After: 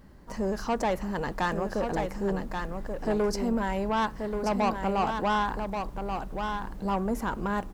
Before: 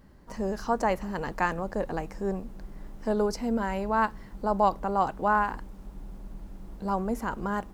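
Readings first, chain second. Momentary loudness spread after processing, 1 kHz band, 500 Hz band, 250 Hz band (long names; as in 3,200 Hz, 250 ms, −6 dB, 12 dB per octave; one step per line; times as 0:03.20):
7 LU, −1.0 dB, +0.5 dB, +1.5 dB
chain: soft clipping −23.5 dBFS, distortion −10 dB
on a send: single-tap delay 1,132 ms −6 dB
on the sum: level +2.5 dB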